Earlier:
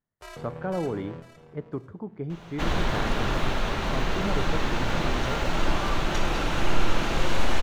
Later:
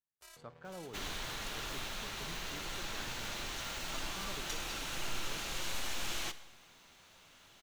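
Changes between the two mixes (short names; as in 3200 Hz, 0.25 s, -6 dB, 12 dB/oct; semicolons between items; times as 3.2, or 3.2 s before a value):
first sound: send off; second sound: entry -1.65 s; master: add pre-emphasis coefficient 0.9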